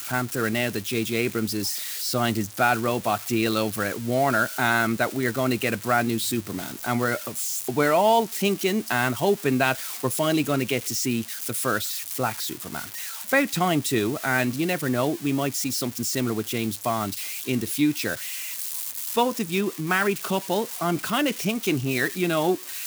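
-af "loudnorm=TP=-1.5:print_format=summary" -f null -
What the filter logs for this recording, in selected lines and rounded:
Input Integrated:    -24.7 LUFS
Input True Peak:      -6.5 dBTP
Input LRA:             2.7 LU
Input Threshold:     -34.7 LUFS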